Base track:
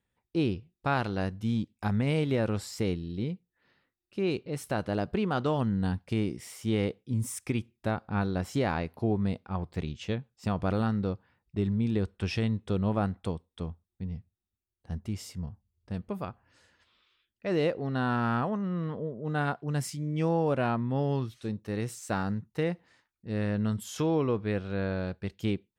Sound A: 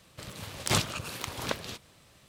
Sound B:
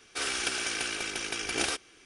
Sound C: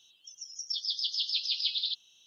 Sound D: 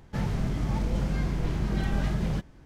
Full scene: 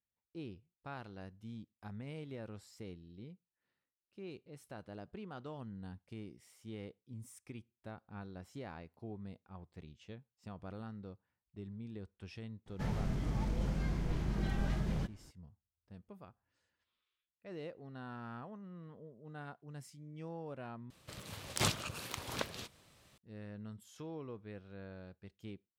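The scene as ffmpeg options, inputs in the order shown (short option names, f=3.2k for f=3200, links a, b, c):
-filter_complex "[0:a]volume=-18.5dB,asplit=2[a][b];[a]atrim=end=20.904[c];[1:a]atrim=end=2.28,asetpts=PTS-STARTPTS,volume=-6dB[d];[b]atrim=start=23.176[e];[4:a]atrim=end=2.65,asetpts=PTS-STARTPTS,volume=-7.5dB,afade=t=in:d=0.004:c=hsin,afade=t=out:st=2.646:d=0.004:c=hsin,adelay=12660[f];[c][d]acrossfade=d=0.004:c1=hsin:c2=hsin[g];[g][e]acrossfade=d=0.004:c1=hsin:c2=hsin[h];[h][f]amix=inputs=2:normalize=0"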